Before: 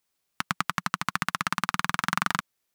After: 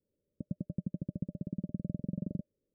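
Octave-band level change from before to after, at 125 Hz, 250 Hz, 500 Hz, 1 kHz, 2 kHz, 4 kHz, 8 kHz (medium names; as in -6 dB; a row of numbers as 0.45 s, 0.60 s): +1.5 dB, +1.0 dB, -4.0 dB, under -40 dB, under -40 dB, under -40 dB, under -40 dB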